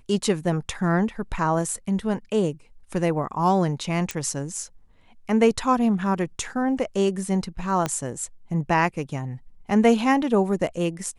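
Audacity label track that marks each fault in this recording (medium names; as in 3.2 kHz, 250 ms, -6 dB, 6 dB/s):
4.110000	4.110000	pop -12 dBFS
7.860000	7.860000	pop -11 dBFS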